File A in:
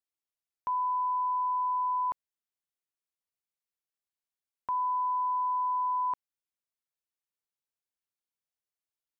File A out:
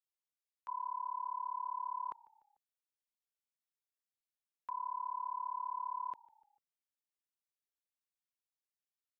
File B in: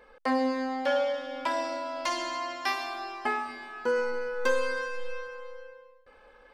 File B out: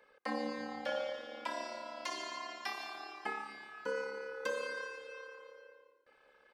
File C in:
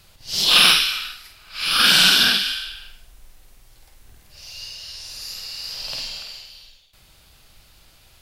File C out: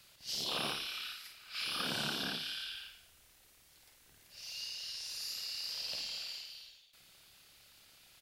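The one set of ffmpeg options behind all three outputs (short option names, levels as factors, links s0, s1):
-filter_complex "[0:a]highpass=f=220:p=1,acrossover=split=1000[s0][s1];[s0]aeval=exprs='val(0)*sin(2*PI*35*n/s)':c=same[s2];[s1]acompressor=threshold=0.0316:ratio=8[s3];[s2][s3]amix=inputs=2:normalize=0,asplit=4[s4][s5][s6][s7];[s5]adelay=148,afreqshift=-57,volume=0.0708[s8];[s6]adelay=296,afreqshift=-114,volume=0.0347[s9];[s7]adelay=444,afreqshift=-171,volume=0.017[s10];[s4][s8][s9][s10]amix=inputs=4:normalize=0,volume=0.473"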